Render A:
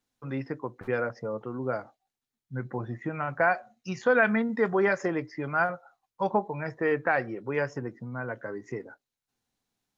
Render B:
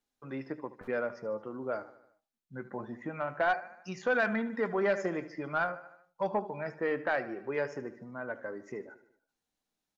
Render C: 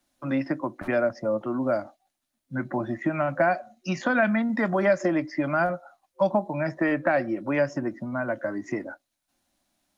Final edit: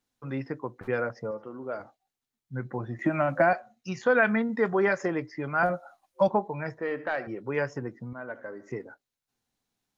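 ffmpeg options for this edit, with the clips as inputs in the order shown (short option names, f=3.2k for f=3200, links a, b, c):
-filter_complex "[1:a]asplit=3[a][b][c];[2:a]asplit=2[d][e];[0:a]asplit=6[f][g][h][i][j][k];[f]atrim=end=1.312[l];[a]atrim=start=1.308:end=1.802[m];[g]atrim=start=1.798:end=2.992[n];[d]atrim=start=2.988:end=3.532[o];[h]atrim=start=3.528:end=5.632[p];[e]atrim=start=5.628:end=6.282[q];[i]atrim=start=6.278:end=6.782[r];[b]atrim=start=6.778:end=7.272[s];[j]atrim=start=7.268:end=8.132[t];[c]atrim=start=8.128:end=8.702[u];[k]atrim=start=8.698[v];[l][m]acrossfade=d=0.004:c1=hsin:c2=hsin[w];[w][n]acrossfade=d=0.004:c1=hsin:c2=hsin[x];[x][o]acrossfade=d=0.004:c1=hsin:c2=hsin[y];[y][p]acrossfade=d=0.004:c1=hsin:c2=hsin[z];[z][q]acrossfade=d=0.004:c1=hsin:c2=hsin[aa];[aa][r]acrossfade=d=0.004:c1=hsin:c2=hsin[ab];[ab][s]acrossfade=d=0.004:c1=hsin:c2=hsin[ac];[ac][t]acrossfade=d=0.004:c1=hsin:c2=hsin[ad];[ad][u]acrossfade=d=0.004:c1=hsin:c2=hsin[ae];[ae][v]acrossfade=d=0.004:c1=hsin:c2=hsin"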